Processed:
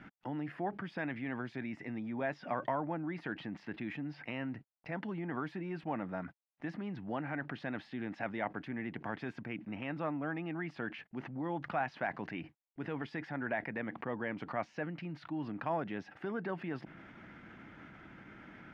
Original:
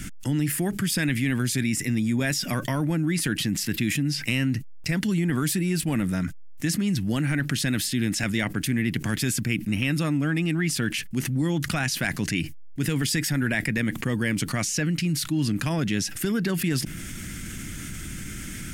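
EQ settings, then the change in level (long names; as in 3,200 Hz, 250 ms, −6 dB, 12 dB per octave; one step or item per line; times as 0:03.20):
resonant band-pass 810 Hz, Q 2.4
high-frequency loss of the air 290 metres
+3.0 dB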